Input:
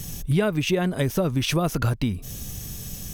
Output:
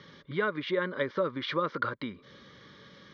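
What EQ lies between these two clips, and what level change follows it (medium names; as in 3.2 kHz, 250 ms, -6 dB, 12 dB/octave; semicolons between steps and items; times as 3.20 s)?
distance through air 170 m; cabinet simulation 450–3800 Hz, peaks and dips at 560 Hz +10 dB, 1.1 kHz +5 dB, 2.3 kHz +6 dB; static phaser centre 2.6 kHz, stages 6; +1.0 dB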